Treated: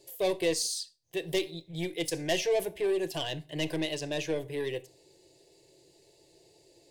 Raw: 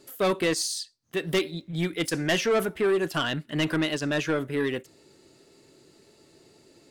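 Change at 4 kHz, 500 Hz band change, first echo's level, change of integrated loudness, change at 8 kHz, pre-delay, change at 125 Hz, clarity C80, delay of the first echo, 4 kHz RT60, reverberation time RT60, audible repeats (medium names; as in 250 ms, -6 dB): -3.5 dB, -3.5 dB, no echo, -5.0 dB, -2.0 dB, 6 ms, -7.5 dB, 26.0 dB, no echo, 0.25 s, 0.40 s, no echo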